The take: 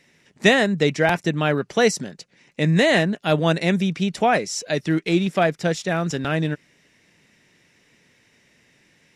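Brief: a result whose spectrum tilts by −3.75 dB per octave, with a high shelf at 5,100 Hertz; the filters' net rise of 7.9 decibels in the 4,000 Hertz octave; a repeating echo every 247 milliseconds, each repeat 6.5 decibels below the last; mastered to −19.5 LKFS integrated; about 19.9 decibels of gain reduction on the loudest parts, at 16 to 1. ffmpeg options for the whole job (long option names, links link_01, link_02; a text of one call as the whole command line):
ffmpeg -i in.wav -af "equalizer=frequency=4000:width_type=o:gain=6,highshelf=frequency=5100:gain=9,acompressor=threshold=-28dB:ratio=16,aecho=1:1:247|494|741|988|1235|1482:0.473|0.222|0.105|0.0491|0.0231|0.0109,volume=12dB" out.wav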